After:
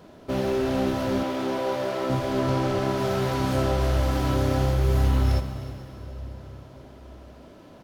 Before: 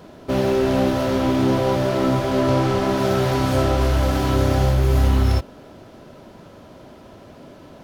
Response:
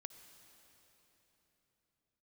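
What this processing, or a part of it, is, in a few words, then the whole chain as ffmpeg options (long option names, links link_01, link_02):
cave: -filter_complex "[0:a]aecho=1:1:307:0.158[link_01];[1:a]atrim=start_sample=2205[link_02];[link_01][link_02]afir=irnorm=-1:irlink=0,asettb=1/sr,asplit=3[link_03][link_04][link_05];[link_03]atrim=end=1.234[link_06];[link_04]atrim=start=1.23:end=2.1,asetpts=PTS-STARTPTS,afade=type=in:duration=0.004:curve=qsin,afade=type=out:start_time=0.866:duration=0.004:curve=qsin,bass=frequency=250:gain=-14,treble=frequency=4000:gain=-2[link_07];[link_05]atrim=start=2.096[link_08];[link_06][link_07]acrossfade=duration=0.004:curve1=hsin:curve2=qsin[link_09];[link_09][link_08]acrossfade=duration=0.004:curve1=qsin:curve2=hsin"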